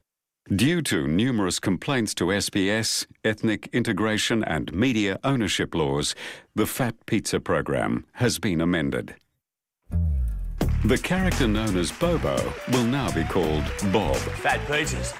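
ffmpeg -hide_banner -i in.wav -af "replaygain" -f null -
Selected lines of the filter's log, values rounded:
track_gain = +5.6 dB
track_peak = 0.253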